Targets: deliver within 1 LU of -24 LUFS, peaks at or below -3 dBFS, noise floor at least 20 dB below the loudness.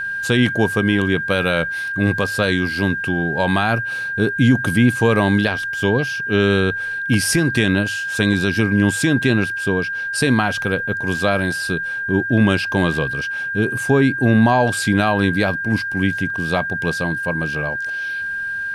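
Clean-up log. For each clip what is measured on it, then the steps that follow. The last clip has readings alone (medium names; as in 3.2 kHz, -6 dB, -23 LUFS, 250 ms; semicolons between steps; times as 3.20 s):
steady tone 1.6 kHz; tone level -22 dBFS; loudness -18.5 LUFS; peak level -4.0 dBFS; loudness target -24.0 LUFS
-> band-stop 1.6 kHz, Q 30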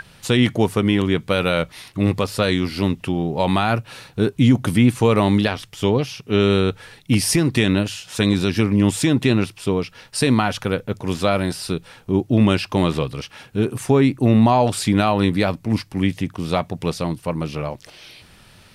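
steady tone not found; loudness -20.0 LUFS; peak level -5.0 dBFS; loudness target -24.0 LUFS
-> trim -4 dB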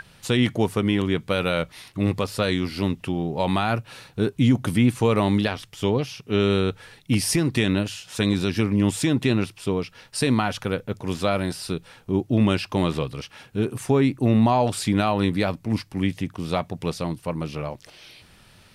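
loudness -24.0 LUFS; peak level -9.0 dBFS; noise floor -53 dBFS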